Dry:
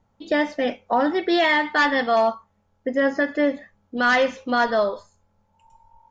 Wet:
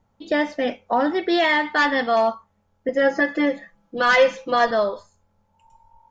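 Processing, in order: 2.88–4.71 s: comb 5.9 ms, depth 94%

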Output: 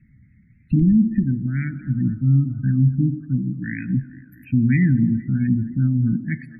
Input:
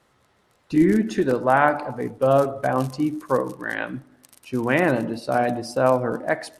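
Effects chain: in parallel at +0.5 dB: compression 4:1, threshold -28 dBFS, peak gain reduction 14 dB; on the sum: FFT filter 450 Hz 0 dB, 980 Hz -15 dB, 2.2 kHz -11 dB, 3.4 kHz -30 dB, 8.1 kHz -29 dB, 12 kHz -11 dB; feedback echo behind a band-pass 227 ms, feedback 69%, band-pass 770 Hz, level -11 dB; spectral gate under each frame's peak -30 dB strong; on a send at -22.5 dB: reverberation RT60 1.6 s, pre-delay 28 ms; 0.79–1.88 s: on the sum: dynamic bell 240 Hz, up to -4 dB, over -28 dBFS, Q 0.71; inverse Chebyshev band-stop 410–1100 Hz, stop band 50 dB; loudness maximiser +19 dB; trim -8 dB

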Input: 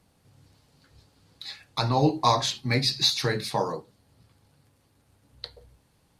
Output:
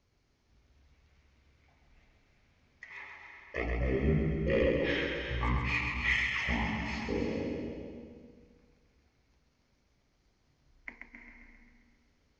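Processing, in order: saturation -8 dBFS, distortion -27 dB; flutter echo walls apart 11.4 m, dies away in 0.82 s; algorithmic reverb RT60 0.72 s, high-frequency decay 0.85×, pre-delay 110 ms, DRR 6 dB; speed mistake 15 ips tape played at 7.5 ips; trim -8.5 dB

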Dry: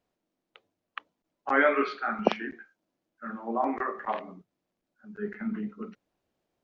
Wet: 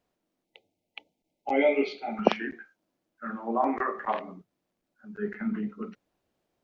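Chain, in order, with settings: time-frequency box 0.45–2.18 s, 920–2000 Hz -25 dB; trim +2 dB

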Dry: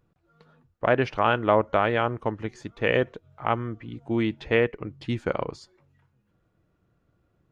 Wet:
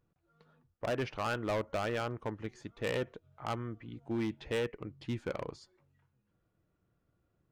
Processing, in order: hard clipper -20.5 dBFS, distortion -8 dB; trim -8 dB

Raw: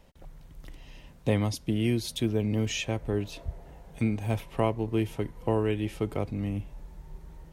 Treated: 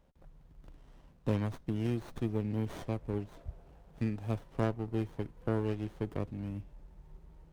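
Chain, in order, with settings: Chebyshev shaper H 3 -21 dB, 6 -22 dB, 8 -28 dB, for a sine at -11.5 dBFS; sliding maximum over 17 samples; trim -5.5 dB

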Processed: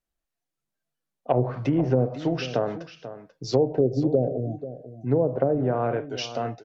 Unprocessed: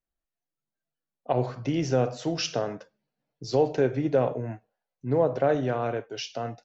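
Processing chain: 1.39–2.06 s: companding laws mixed up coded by mu; 3.78–4.59 s: spectral selection erased 790–3300 Hz; low-pass that closes with the level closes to 470 Hz, closed at -19.5 dBFS; delay 489 ms -13.5 dB; trim +3.5 dB

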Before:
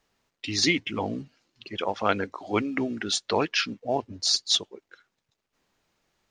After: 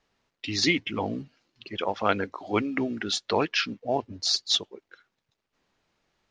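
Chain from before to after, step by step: low-pass 5.8 kHz 12 dB/octave

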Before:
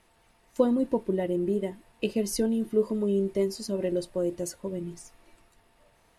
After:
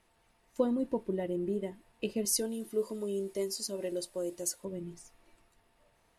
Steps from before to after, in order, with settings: 2.25–4.65 s: tone controls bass -9 dB, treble +11 dB; trim -6 dB

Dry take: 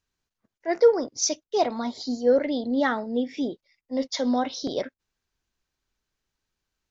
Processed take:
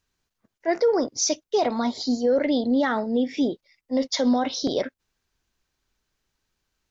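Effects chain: peak limiter -18.5 dBFS, peak gain reduction 10.5 dB; trim +5 dB

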